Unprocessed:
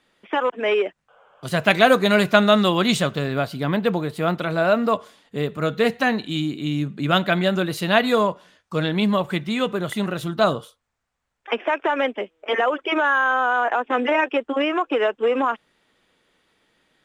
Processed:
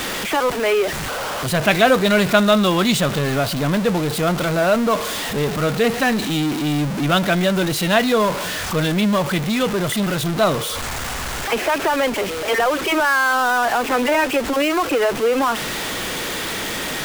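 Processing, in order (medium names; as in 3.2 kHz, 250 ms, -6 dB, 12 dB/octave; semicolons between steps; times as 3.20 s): jump at every zero crossing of -18.5 dBFS; trim -1 dB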